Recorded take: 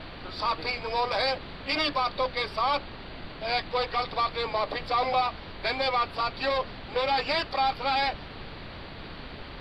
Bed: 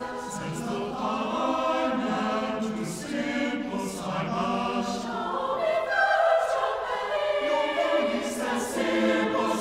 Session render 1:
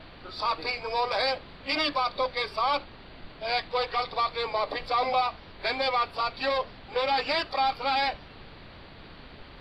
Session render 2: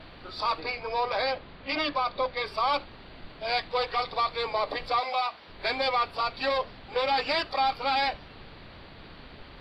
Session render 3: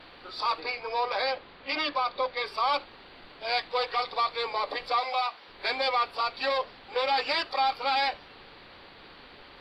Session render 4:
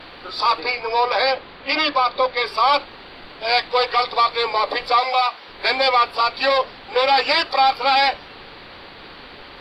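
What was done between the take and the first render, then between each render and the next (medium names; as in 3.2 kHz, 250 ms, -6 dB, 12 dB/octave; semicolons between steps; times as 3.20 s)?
noise print and reduce 6 dB
0.60–2.46 s: distance through air 130 m; 4.99–5.48 s: high-pass 1.3 kHz -> 450 Hz 6 dB/octave
tone controls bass -12 dB, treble +1 dB; band-stop 640 Hz, Q 12
trim +10 dB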